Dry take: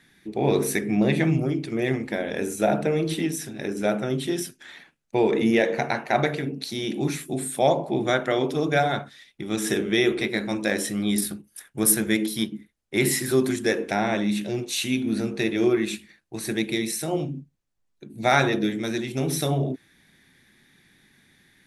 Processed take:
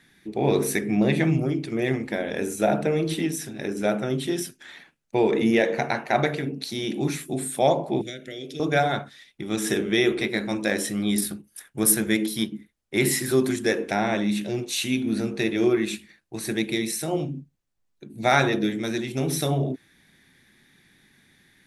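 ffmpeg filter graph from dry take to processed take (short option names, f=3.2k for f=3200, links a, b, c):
-filter_complex "[0:a]asettb=1/sr,asplit=3[a][b][c];[a]atrim=end=8.014[d];[b]atrim=start=8.01:end=8.6,asetpts=PTS-STARTPTS,afade=t=in:d=0.004:c=qsin,afade=t=out:st=0.586:d=0.004:c=qsin,acrossover=split=800|7600[e][f][g];[e]acompressor=threshold=-35dB:ratio=4[h];[f]acompressor=threshold=-32dB:ratio=4[i];[g]acompressor=threshold=-60dB:ratio=4[j];[h][i][j]amix=inputs=3:normalize=0,asuperstop=centerf=1000:order=4:qfactor=0.54[k];[c]atrim=start=8.596[l];[d][k]acrossfade=d=0.004:c1=hsin:c2=qsin[m];[m][l]acrossfade=d=0.004:c1=qsin:c2=hsin"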